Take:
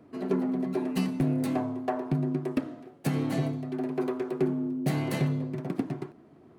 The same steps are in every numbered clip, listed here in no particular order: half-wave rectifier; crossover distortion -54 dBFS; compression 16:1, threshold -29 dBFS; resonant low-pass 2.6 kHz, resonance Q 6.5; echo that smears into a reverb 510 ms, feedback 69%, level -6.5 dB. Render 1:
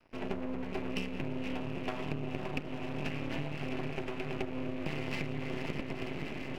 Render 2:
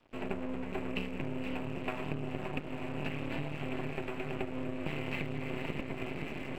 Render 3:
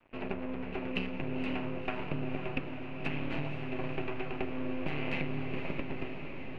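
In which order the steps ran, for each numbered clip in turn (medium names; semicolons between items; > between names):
crossover distortion > echo that smears into a reverb > compression > resonant low-pass > half-wave rectifier; echo that smears into a reverb > compression > half-wave rectifier > resonant low-pass > crossover distortion; compression > half-wave rectifier > echo that smears into a reverb > crossover distortion > resonant low-pass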